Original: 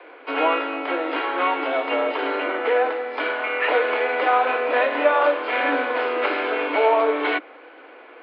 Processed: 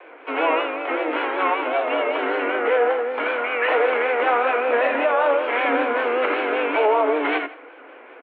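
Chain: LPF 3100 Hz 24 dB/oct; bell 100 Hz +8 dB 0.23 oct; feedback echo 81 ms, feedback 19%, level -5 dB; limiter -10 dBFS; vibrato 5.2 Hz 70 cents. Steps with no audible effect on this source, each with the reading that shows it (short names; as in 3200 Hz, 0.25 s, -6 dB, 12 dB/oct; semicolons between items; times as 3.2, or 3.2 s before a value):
bell 100 Hz: input band starts at 240 Hz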